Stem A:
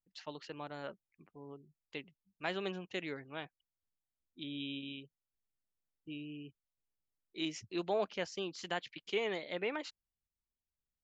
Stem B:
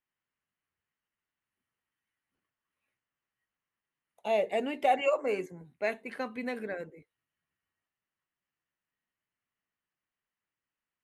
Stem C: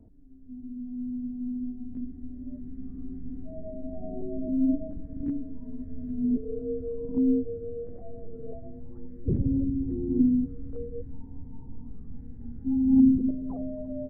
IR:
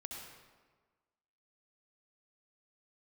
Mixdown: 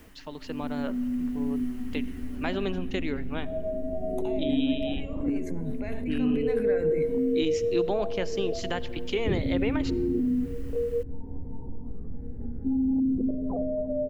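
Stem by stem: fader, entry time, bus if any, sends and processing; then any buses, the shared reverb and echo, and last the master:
+2.5 dB, 0.00 s, bus A, send −17 dB, no processing
0:02.23 −5.5 dB → 0:02.91 −17 dB → 0:04.08 −17 dB → 0:04.65 −24 dB → 0:06.04 −24 dB → 0:06.62 −13.5 dB, 0.00 s, bus A, send −17 dB, envelope flattener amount 100%; automatic ducking −9 dB, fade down 0.20 s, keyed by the first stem
+1.5 dB, 0.00 s, no bus, no send, brickwall limiter −21.5 dBFS, peak gain reduction 11 dB; octave-band graphic EQ 125/250/500 Hz −5/−8/+8 dB; downward compressor 2 to 1, threshold −39 dBFS, peak gain reduction 8.5 dB
bus A: 0.0 dB, downward compressor 2 to 1, threshold −41 dBFS, peak gain reduction 8 dB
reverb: on, RT60 1.4 s, pre-delay 60 ms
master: parametric band 220 Hz +6 dB 2.3 octaves; automatic gain control gain up to 6 dB

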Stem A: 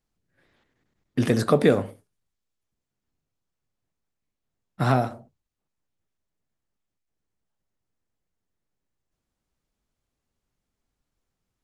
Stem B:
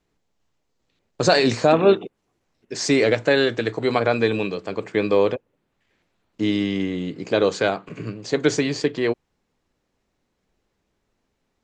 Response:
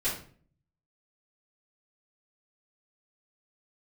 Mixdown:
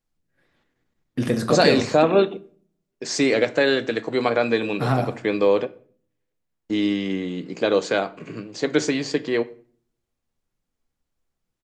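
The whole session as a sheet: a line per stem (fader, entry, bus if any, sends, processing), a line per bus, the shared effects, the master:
−3.0 dB, 0.00 s, send −13 dB, no processing
−1.5 dB, 0.30 s, send −19.5 dB, high-pass filter 150 Hz; noise gate with hold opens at −31 dBFS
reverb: on, RT60 0.45 s, pre-delay 4 ms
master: no processing

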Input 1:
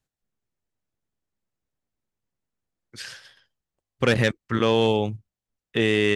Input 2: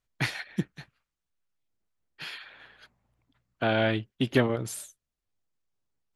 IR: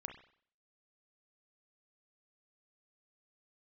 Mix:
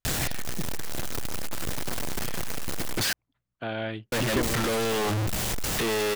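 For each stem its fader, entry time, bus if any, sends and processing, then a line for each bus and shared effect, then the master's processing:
+1.5 dB, 0.05 s, muted 0:03.13–0:04.12, no send, sign of each sample alone
−7.0 dB, 0.00 s, no send, no processing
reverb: not used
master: no processing

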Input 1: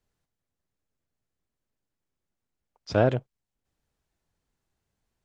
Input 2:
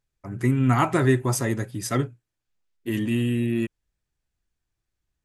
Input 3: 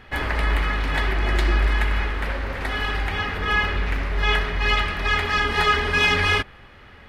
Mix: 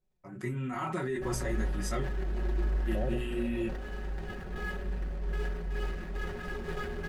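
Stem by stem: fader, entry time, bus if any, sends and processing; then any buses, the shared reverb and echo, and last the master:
−4.0 dB, 0.00 s, bus A, no send, inverse Chebyshev low-pass filter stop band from 1,700 Hz, stop band 40 dB
−5.0 dB, 0.00 s, bus A, no send, mains-hum notches 60/120/180/240 Hz; micro pitch shift up and down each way 19 cents
−11.0 dB, 1.10 s, no bus, no send, running median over 41 samples
bus A: 0.0 dB, brickwall limiter −26.5 dBFS, peak gain reduction 13.5 dB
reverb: not used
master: high-shelf EQ 10,000 Hz −9 dB; comb filter 5.4 ms; level that may fall only so fast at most 48 dB per second

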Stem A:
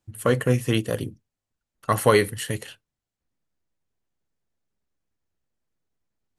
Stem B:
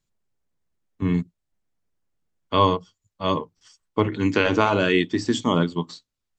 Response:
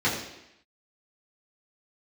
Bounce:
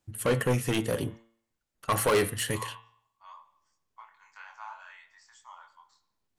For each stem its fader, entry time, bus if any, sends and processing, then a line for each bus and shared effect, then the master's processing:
+1.5 dB, 0.00 s, no send, low-shelf EQ 200 Hz −3.5 dB; soft clipping −21 dBFS, distortion −7 dB
−15.5 dB, 0.00 s, send −21.5 dB, Butterworth high-pass 820 Hz 48 dB per octave; parametric band 3,200 Hz −13 dB 1.3 octaves; chorus effect 2.9 Hz, depth 4.3 ms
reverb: on, RT60 0.85 s, pre-delay 3 ms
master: hum removal 114 Hz, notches 35

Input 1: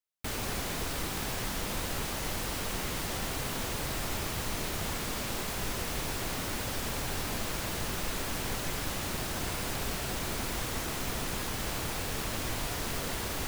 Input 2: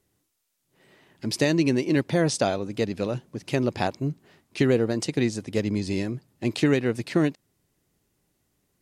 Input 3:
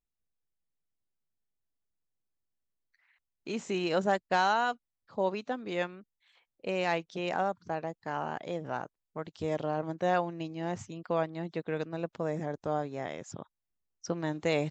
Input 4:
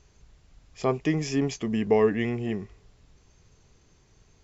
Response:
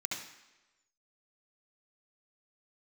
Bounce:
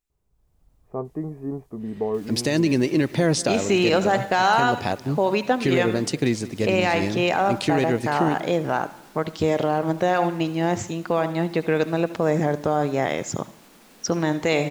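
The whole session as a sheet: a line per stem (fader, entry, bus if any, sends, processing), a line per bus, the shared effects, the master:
−13.5 dB, 1.90 s, no bus, no send, no echo send, low shelf with overshoot 150 Hz −12 dB, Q 3; brickwall limiter −28.5 dBFS, peak gain reduction 7.5 dB
−8.0 dB, 1.05 s, bus A, no send, echo send −10 dB, no processing
+3.0 dB, 0.00 s, bus A, send −5 dB, no echo send, no processing
−16.5 dB, 0.10 s, bus A, no send, no echo send, inverse Chebyshev low-pass filter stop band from 5,000 Hz, stop band 70 dB
bus A: 0.0 dB, automatic gain control gain up to 12 dB; brickwall limiter −10.5 dBFS, peak gain reduction 8.5 dB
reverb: on, RT60 1.1 s, pre-delay 64 ms
echo: repeating echo 187 ms, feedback 53%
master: no processing

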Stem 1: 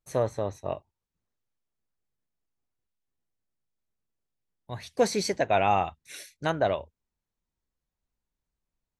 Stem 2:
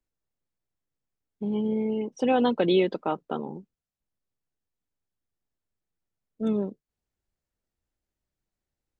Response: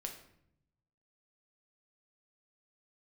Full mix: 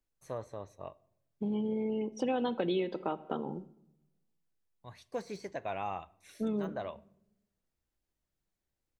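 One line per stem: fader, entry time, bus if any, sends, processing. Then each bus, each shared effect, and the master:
−14.5 dB, 0.15 s, send −12 dB, de-essing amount 95%; parametric band 1,100 Hz +6 dB 0.35 octaves
−3.5 dB, 0.00 s, send −6.5 dB, no processing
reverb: on, RT60 0.70 s, pre-delay 6 ms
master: downward compressor 3 to 1, threshold −31 dBFS, peak gain reduction 10 dB

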